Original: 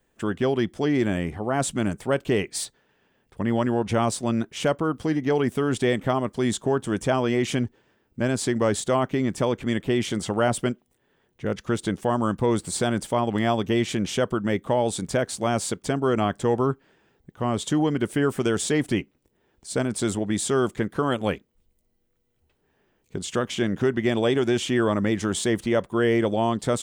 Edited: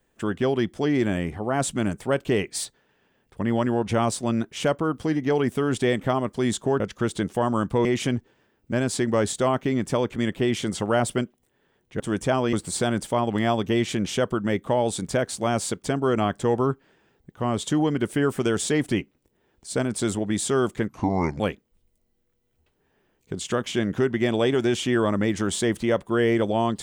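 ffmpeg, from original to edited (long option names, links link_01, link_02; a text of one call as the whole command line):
ffmpeg -i in.wav -filter_complex "[0:a]asplit=7[link_01][link_02][link_03][link_04][link_05][link_06][link_07];[link_01]atrim=end=6.802[link_08];[link_02]atrim=start=11.478:end=12.532[link_09];[link_03]atrim=start=7.328:end=11.482[link_10];[link_04]atrim=start=6.798:end=7.332[link_11];[link_05]atrim=start=12.528:end=20.894[link_12];[link_06]atrim=start=20.89:end=21.23,asetpts=PTS-STARTPTS,asetrate=29547,aresample=44100,atrim=end_sample=22379,asetpts=PTS-STARTPTS[link_13];[link_07]atrim=start=21.226[link_14];[link_08][link_09]acrossfade=duration=0.004:curve1=hsin:curve2=hsin[link_15];[link_15][link_10]acrossfade=duration=0.004:curve1=hsin:curve2=hsin[link_16];[link_16][link_11]acrossfade=duration=0.004:curve1=hsin:curve2=hsin[link_17];[link_17][link_12]acrossfade=duration=0.004:curve1=hsin:curve2=hsin[link_18];[link_18][link_13]acrossfade=duration=0.004:curve1=hsin:curve2=hsin[link_19];[link_19][link_14]acrossfade=duration=0.004:curve1=hsin:curve2=hsin" out.wav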